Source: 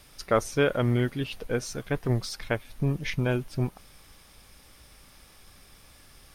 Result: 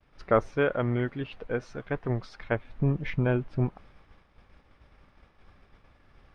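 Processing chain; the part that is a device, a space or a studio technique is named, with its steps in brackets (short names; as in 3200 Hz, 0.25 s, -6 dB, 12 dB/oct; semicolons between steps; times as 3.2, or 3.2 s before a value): hearing-loss simulation (LPF 1900 Hz 12 dB/oct; expander -50 dBFS); 0.51–2.52 low shelf 430 Hz -5.5 dB; gain +1 dB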